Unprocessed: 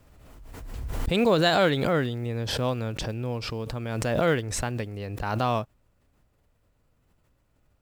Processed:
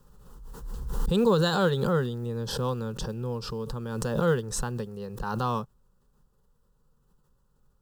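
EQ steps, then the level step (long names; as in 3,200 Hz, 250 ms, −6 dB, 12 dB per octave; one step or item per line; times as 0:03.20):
low-shelf EQ 190 Hz +5 dB
phaser with its sweep stopped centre 440 Hz, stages 8
0.0 dB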